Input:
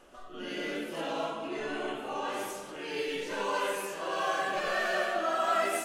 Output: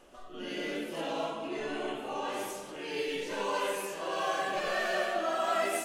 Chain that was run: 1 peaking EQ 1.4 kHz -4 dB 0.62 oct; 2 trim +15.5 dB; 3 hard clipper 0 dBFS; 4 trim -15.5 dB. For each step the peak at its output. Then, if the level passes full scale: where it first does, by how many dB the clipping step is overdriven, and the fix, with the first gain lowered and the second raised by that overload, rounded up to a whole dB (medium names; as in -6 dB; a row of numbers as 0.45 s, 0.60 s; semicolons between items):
-18.5 dBFS, -3.0 dBFS, -3.0 dBFS, -18.5 dBFS; nothing clips